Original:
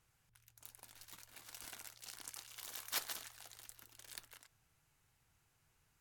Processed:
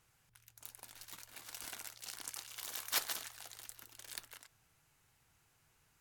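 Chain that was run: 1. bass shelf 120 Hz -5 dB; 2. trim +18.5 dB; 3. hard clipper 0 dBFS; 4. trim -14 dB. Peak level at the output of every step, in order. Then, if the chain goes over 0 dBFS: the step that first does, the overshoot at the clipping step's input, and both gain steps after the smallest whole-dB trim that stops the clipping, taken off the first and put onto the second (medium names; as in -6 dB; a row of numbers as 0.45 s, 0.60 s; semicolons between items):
-22.5 dBFS, -4.0 dBFS, -4.0 dBFS, -18.0 dBFS; nothing clips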